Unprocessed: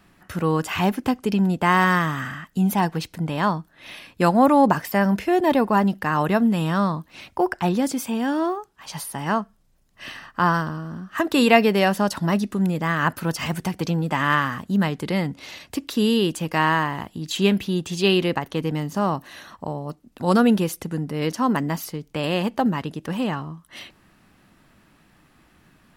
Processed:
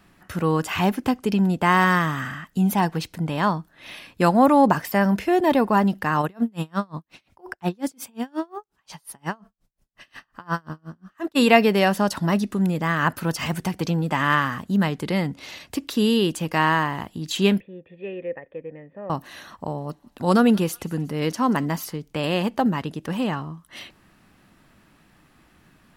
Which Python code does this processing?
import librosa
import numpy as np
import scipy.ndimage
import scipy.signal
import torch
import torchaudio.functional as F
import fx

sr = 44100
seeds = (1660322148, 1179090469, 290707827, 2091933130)

y = fx.tremolo_db(x, sr, hz=5.6, depth_db=35, at=(6.21, 11.35), fade=0.02)
y = fx.formant_cascade(y, sr, vowel='e', at=(17.6, 19.1))
y = fx.echo_wet_highpass(y, sr, ms=182, feedback_pct=54, hz=1500.0, wet_db=-20.5, at=(19.77, 21.93), fade=0.02)